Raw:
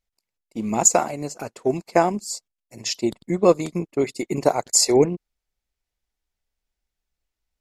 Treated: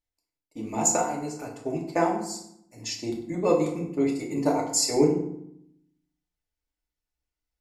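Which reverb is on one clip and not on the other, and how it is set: FDN reverb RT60 0.73 s, low-frequency decay 1.45×, high-frequency decay 0.65×, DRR -2 dB; trim -9.5 dB

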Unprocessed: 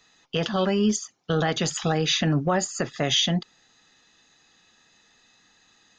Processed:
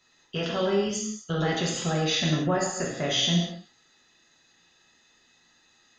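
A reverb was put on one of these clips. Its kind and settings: gated-style reverb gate 290 ms falling, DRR -3.5 dB; trim -7 dB

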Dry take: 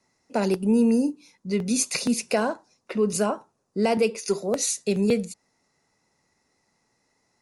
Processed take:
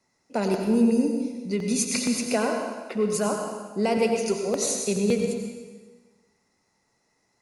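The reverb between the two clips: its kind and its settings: plate-style reverb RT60 1.4 s, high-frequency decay 0.9×, pre-delay 75 ms, DRR 3 dB; trim -2 dB

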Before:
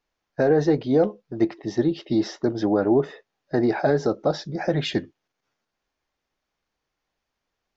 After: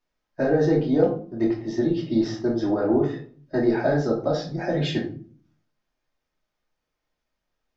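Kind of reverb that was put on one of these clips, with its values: simulated room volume 370 m³, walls furnished, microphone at 2.7 m; trim -6 dB

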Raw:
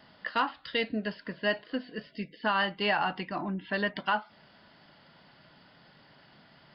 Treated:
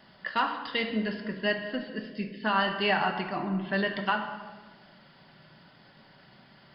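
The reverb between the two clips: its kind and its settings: simulated room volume 1200 m³, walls mixed, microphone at 1.1 m

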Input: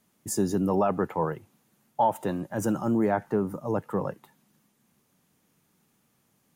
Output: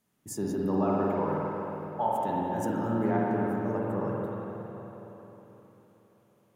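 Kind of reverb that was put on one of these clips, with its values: spring tank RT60 3.9 s, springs 45/52 ms, chirp 55 ms, DRR -5 dB; trim -8 dB

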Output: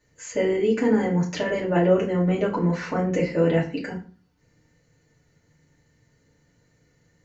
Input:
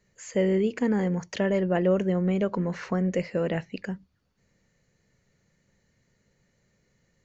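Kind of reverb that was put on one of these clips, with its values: FDN reverb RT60 0.39 s, low-frequency decay 1.3×, high-frequency decay 0.75×, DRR -5.5 dB; trim -1.5 dB

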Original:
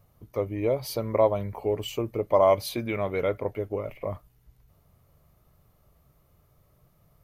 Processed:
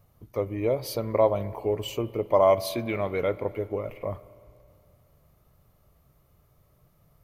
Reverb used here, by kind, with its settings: spring tank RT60 2.5 s, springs 33/57 ms, chirp 75 ms, DRR 17 dB

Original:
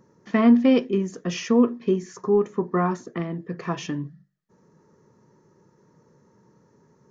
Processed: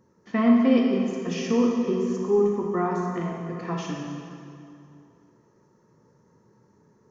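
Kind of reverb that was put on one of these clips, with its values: plate-style reverb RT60 2.6 s, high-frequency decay 0.75×, DRR -1.5 dB; trim -5.5 dB

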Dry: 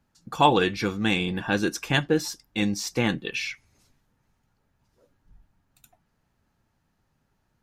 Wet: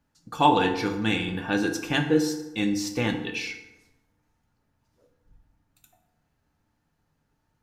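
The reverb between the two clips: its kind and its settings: FDN reverb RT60 1 s, low-frequency decay 1×, high-frequency decay 0.6×, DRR 4 dB; trim -3 dB

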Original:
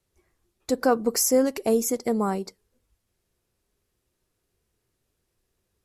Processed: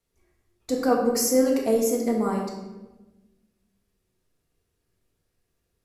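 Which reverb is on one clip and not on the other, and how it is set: simulated room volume 620 m³, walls mixed, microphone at 1.7 m; trim -4.5 dB

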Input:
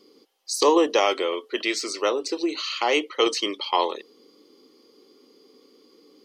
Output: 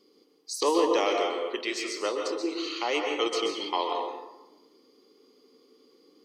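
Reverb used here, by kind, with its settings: plate-style reverb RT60 1 s, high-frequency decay 0.5×, pre-delay 115 ms, DRR 2 dB; trim -7 dB

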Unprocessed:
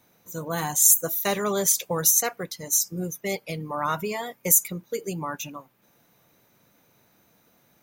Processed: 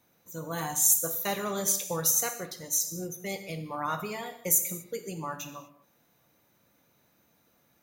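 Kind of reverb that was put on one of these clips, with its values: gated-style reverb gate 270 ms falling, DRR 6.5 dB; trim -6 dB

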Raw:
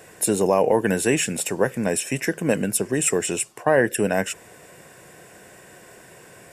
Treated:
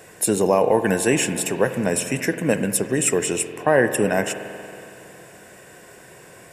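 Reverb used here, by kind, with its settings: spring tank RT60 2.9 s, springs 46 ms, chirp 50 ms, DRR 9.5 dB; trim +1 dB

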